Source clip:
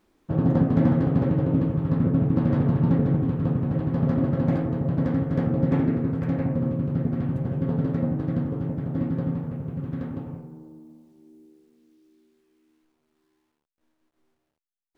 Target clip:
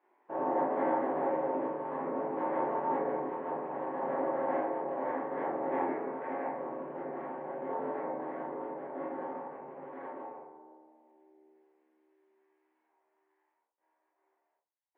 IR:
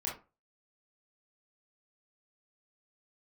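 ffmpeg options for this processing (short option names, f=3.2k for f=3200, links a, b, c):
-filter_complex "[0:a]highpass=f=430:w=0.5412,highpass=f=430:w=1.3066,equalizer=f=470:t=q:w=4:g=-4,equalizer=f=910:t=q:w=4:g=6,equalizer=f=1.3k:t=q:w=4:g=-8,lowpass=f=2k:w=0.5412,lowpass=f=2k:w=1.3066[a];[1:a]atrim=start_sample=2205[b];[a][b]afir=irnorm=-1:irlink=0"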